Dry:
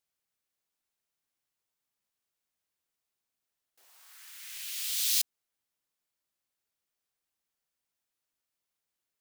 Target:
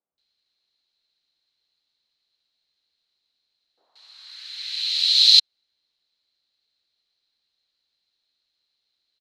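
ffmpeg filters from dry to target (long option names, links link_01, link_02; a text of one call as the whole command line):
ffmpeg -i in.wav -filter_complex "[0:a]lowpass=frequency=4100:width_type=q:width=13,acrossover=split=160|1100[link_01][link_02][link_03];[link_01]adelay=120[link_04];[link_03]adelay=180[link_05];[link_04][link_02][link_05]amix=inputs=3:normalize=0,volume=5dB" out.wav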